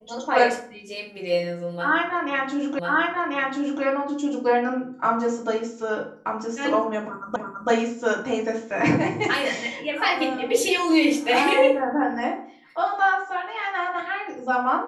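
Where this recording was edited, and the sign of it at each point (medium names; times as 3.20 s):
2.79 s: repeat of the last 1.04 s
7.36 s: repeat of the last 0.33 s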